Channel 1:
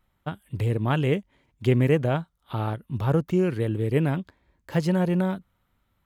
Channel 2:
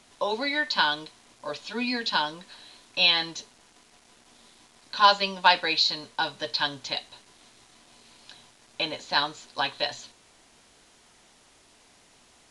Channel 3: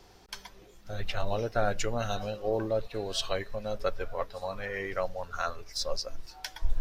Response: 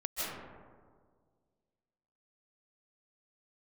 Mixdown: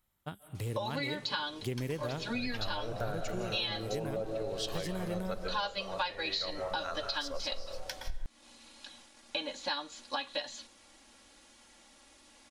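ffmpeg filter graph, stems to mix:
-filter_complex "[0:a]bass=f=250:g=-2,treble=f=4k:g=13,volume=-10dB,asplit=2[a][b];[b]volume=-17.5dB[c];[1:a]aecho=1:1:3.6:0.9,adelay=550,volume=-4dB[d];[2:a]adelay=1450,volume=-4.5dB,asplit=2[e][f];[f]volume=-6dB[g];[3:a]atrim=start_sample=2205[h];[c][g]amix=inputs=2:normalize=0[i];[i][h]afir=irnorm=-1:irlink=0[j];[a][d][e][j]amix=inputs=4:normalize=0,acompressor=threshold=-32dB:ratio=6"

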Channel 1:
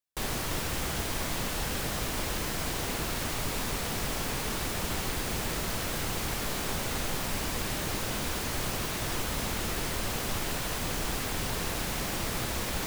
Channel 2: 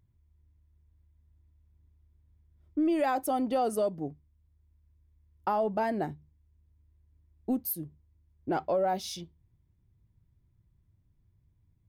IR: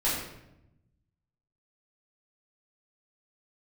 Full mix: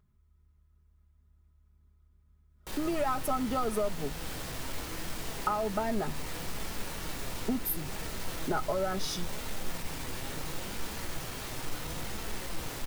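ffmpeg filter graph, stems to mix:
-filter_complex "[0:a]asoftclip=type=tanh:threshold=-32.5dB,flanger=delay=4.3:depth=3.7:regen=67:speed=0.72:shape=triangular,adelay=2500,volume=-1.5dB,asplit=2[a][b];[b]volume=-12dB[c];[1:a]equalizer=f=1.3k:t=o:w=0.27:g=14,aecho=1:1:4.8:0.65,acompressor=threshold=-29dB:ratio=6,volume=1dB,asplit=2[d][e];[e]apad=whole_len=677671[f];[a][f]sidechaincompress=threshold=-36dB:ratio=8:attack=16:release=347[g];[2:a]atrim=start_sample=2205[h];[c][h]afir=irnorm=-1:irlink=0[i];[g][d][i]amix=inputs=3:normalize=0"

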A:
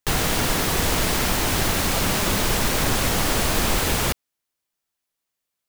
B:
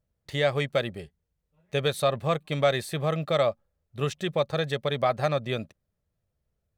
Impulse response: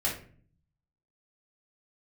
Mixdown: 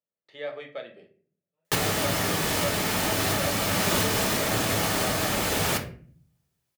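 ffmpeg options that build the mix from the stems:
-filter_complex "[0:a]adelay=1650,volume=-1dB,asplit=2[a][b];[b]volume=-11.5dB[c];[1:a]acrossover=split=210 4700:gain=0.0631 1 0.0794[d][e][f];[d][e][f]amix=inputs=3:normalize=0,volume=-16.5dB,asplit=3[g][h][i];[h]volume=-5.5dB[j];[i]apad=whole_len=323671[k];[a][k]sidechaincompress=threshold=-47dB:ratio=8:attack=16:release=857[l];[2:a]atrim=start_sample=2205[m];[c][j]amix=inputs=2:normalize=0[n];[n][m]afir=irnorm=-1:irlink=0[o];[l][g][o]amix=inputs=3:normalize=0,highpass=120"

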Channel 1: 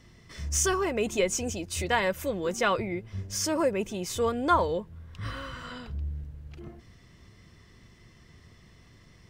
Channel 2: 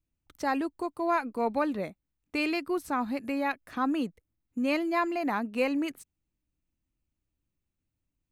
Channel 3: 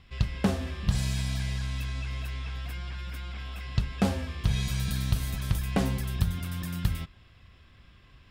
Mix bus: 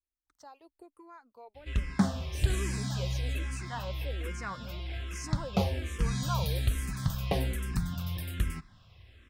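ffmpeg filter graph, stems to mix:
-filter_complex "[0:a]adelay=1800,volume=-11.5dB[a];[1:a]equalizer=f=180:t=o:w=0.96:g=-14.5,acompressor=threshold=-34dB:ratio=4,volume=-12.5dB[b];[2:a]adelay=1550,volume=1dB[c];[a][b][c]amix=inputs=3:normalize=0,asplit=2[d][e];[e]afreqshift=-1.2[f];[d][f]amix=inputs=2:normalize=1"

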